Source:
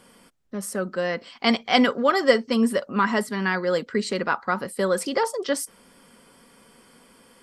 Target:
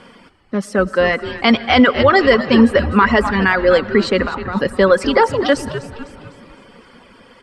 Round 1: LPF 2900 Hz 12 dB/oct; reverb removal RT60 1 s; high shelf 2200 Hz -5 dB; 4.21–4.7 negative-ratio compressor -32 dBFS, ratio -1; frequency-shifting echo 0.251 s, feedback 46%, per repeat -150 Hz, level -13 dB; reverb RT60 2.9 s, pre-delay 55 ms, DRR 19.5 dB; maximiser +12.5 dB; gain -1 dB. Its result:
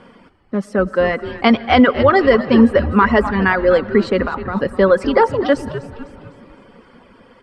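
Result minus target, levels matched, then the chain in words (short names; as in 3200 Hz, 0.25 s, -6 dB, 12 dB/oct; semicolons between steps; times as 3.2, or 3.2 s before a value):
4000 Hz band -5.0 dB
LPF 2900 Hz 12 dB/oct; reverb removal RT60 1 s; high shelf 2200 Hz +5.5 dB; 4.21–4.7 negative-ratio compressor -32 dBFS, ratio -1; frequency-shifting echo 0.251 s, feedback 46%, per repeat -150 Hz, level -13 dB; reverb RT60 2.9 s, pre-delay 55 ms, DRR 19.5 dB; maximiser +12.5 dB; gain -1 dB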